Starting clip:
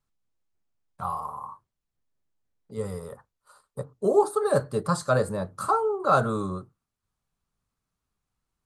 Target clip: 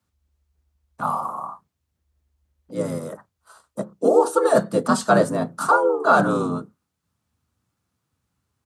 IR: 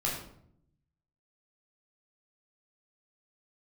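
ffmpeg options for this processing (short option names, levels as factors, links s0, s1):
-filter_complex "[0:a]afreqshift=72,asplit=3[s0][s1][s2];[s1]asetrate=29433,aresample=44100,atempo=1.49831,volume=0.316[s3];[s2]asetrate=37084,aresample=44100,atempo=1.18921,volume=0.398[s4];[s0][s3][s4]amix=inputs=3:normalize=0,alimiter=level_in=2.99:limit=0.891:release=50:level=0:latency=1,volume=0.631"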